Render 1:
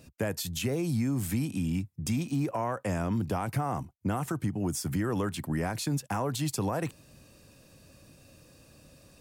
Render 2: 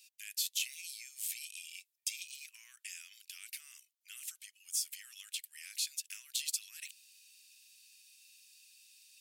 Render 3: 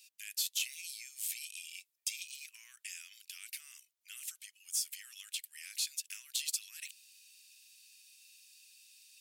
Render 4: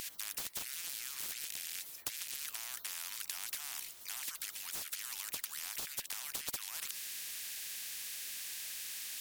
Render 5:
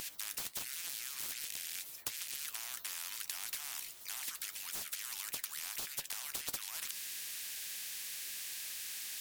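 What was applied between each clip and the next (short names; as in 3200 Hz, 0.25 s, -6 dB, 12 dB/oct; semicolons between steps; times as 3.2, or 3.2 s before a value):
steep high-pass 2500 Hz 36 dB/oct; gain +1.5 dB
soft clip -21.5 dBFS, distortion -25 dB; gain +1 dB
compressor, threshold -42 dBFS, peak gain reduction 11.5 dB; spectral compressor 10:1; gain +8 dB
flange 1.5 Hz, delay 6.8 ms, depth 7.7 ms, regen +70%; gain +4.5 dB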